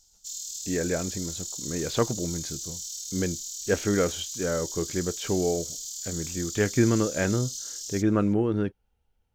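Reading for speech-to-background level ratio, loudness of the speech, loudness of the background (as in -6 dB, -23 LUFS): 5.5 dB, -28.5 LUFS, -34.0 LUFS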